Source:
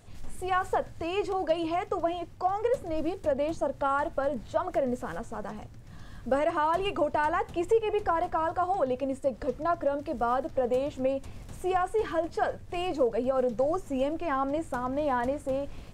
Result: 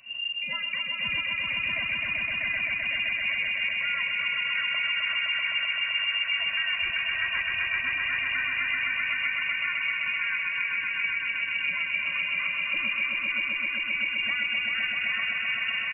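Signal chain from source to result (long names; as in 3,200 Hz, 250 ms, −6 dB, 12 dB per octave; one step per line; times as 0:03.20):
comb filter 2.3 ms, depth 85%
downward compressor, threshold −30 dBFS, peak gain reduction 15 dB
echo that builds up and dies away 129 ms, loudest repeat 5, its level −4 dB
voice inversion scrambler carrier 2,800 Hz
level −1.5 dB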